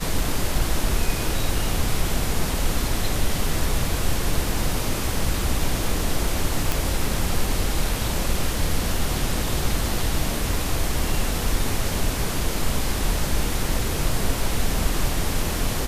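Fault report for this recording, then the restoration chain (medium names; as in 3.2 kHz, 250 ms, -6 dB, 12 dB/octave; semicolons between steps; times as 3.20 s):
6.72 s: pop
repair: de-click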